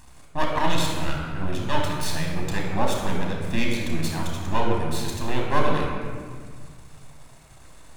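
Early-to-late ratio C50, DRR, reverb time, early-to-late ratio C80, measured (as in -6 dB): 1.5 dB, -0.5 dB, 1.7 s, 3.0 dB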